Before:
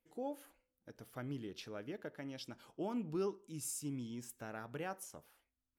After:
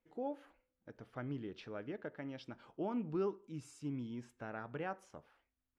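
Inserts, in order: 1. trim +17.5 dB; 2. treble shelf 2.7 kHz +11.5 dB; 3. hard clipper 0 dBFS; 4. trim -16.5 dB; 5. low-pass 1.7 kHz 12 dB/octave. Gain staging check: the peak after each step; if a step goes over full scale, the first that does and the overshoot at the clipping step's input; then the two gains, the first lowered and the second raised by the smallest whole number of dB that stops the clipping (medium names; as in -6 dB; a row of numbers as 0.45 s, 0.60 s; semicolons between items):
-10.5 dBFS, -3.0 dBFS, -3.0 dBFS, -19.5 dBFS, -26.5 dBFS; nothing clips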